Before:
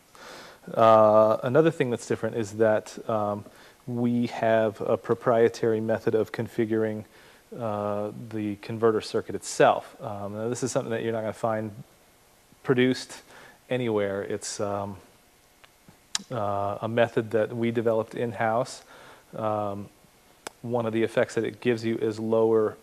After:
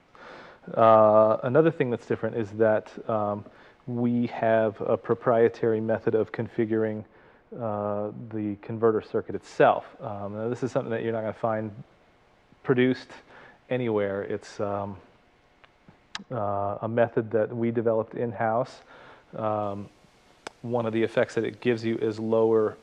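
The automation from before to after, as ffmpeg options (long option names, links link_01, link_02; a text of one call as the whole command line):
ffmpeg -i in.wav -af "asetnsamples=nb_out_samples=441:pad=0,asendcmd='6.98 lowpass f 1600;9.32 lowpass f 2800;16.17 lowpass f 1600;18.64 lowpass f 3300;19.63 lowpass f 5900',lowpass=2700" out.wav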